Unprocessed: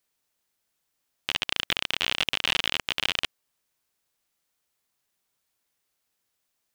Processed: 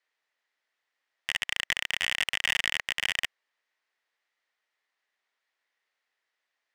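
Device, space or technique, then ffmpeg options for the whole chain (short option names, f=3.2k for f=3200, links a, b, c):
megaphone: -af "highpass=500,lowpass=3.7k,equalizer=f=1.9k:t=o:w=0.33:g=10,asoftclip=type=hard:threshold=-14.5dB"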